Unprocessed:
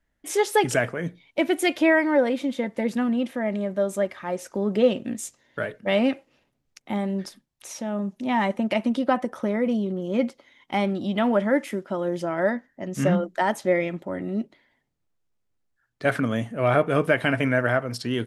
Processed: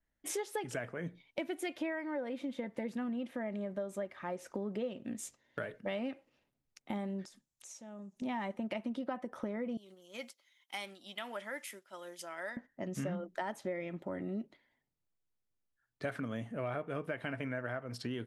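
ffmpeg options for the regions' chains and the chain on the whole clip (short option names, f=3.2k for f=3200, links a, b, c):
-filter_complex "[0:a]asettb=1/sr,asplit=3[a][b][c];[a]atrim=end=7.254[d];[b]atrim=start=7.25:end=8.22,asetpts=PTS-STARTPTS,afade=t=in:d=0.004:c=qsin,afade=t=out:st=0.966:d=0.004:c=qsin,equalizer=f=7.1k:w=1.5:g=13,acompressor=threshold=-43dB:ratio=5:attack=3.2:release=140:knee=1:detection=peak[e];[c]atrim=start=8.216[f];[d][e]acrossfade=d=0.004:c1=hsin:c2=qsin[g];[g][f]acrossfade=d=0.004:c1=qsin:c2=hsin,asettb=1/sr,asplit=3[h][i][j];[h]atrim=end=9.774[k];[i]atrim=start=9.77:end=12.57,asetpts=PTS-STARTPTS,afade=t=in:d=0.004:c=qsin,afade=t=out:st=2.796:d=0.004:c=qsin,aderivative,acontrast=43[l];[j]atrim=start=12.566[m];[k][l]acrossfade=d=0.004:c1=hsin:c2=qsin[n];[n][m]acrossfade=d=0.004:c1=qsin:c2=hsin,agate=range=-6dB:threshold=-44dB:ratio=16:detection=peak,acompressor=threshold=-32dB:ratio=5,adynamicequalizer=threshold=0.00178:dfrequency=3700:dqfactor=0.7:tfrequency=3700:tqfactor=0.7:attack=5:release=100:ratio=0.375:range=3:mode=cutabove:tftype=highshelf,volume=-4dB"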